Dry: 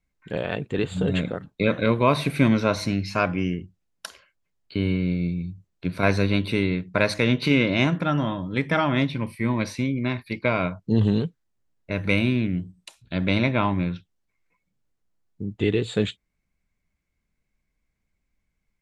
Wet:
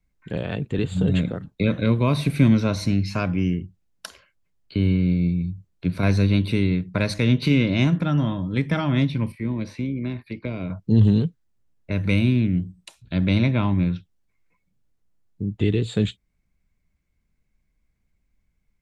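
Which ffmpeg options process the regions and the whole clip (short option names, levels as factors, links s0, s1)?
-filter_complex "[0:a]asettb=1/sr,asplit=3[s0][s1][s2];[s0]atrim=end=9.324[s3];[s1]atrim=start=9.32:end=10.7,asetpts=PTS-STARTPTS,afade=t=in:d=0.004:c=qsin,afade=t=out:st=1.376:d=0.004:c=qsin,bass=f=250:g=-6,treble=f=4000:g=-12,acrossover=split=480|3000[s4][s5][s6];[s5]acompressor=threshold=0.00794:ratio=4:attack=3.2:release=140:knee=2.83:detection=peak[s7];[s4][s7][s6]amix=inputs=3:normalize=0,tremolo=f=76:d=0.261[s8];[s2]atrim=start=10.696[s9];[s3][s8]acrossfade=d=0.004:c1=hsin:c2=qsin[s10];[s10][s9]acrossfade=d=0.004:c1=qsin:c2=hsin,lowshelf=f=240:g=7,acrossover=split=300|3000[s11][s12][s13];[s12]acompressor=threshold=0.0141:ratio=1.5[s14];[s11][s14][s13]amix=inputs=3:normalize=0"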